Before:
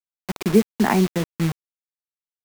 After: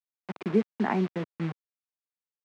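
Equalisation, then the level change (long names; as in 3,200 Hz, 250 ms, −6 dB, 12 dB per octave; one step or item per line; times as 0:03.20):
band-pass filter 150–2,500 Hz
−7.5 dB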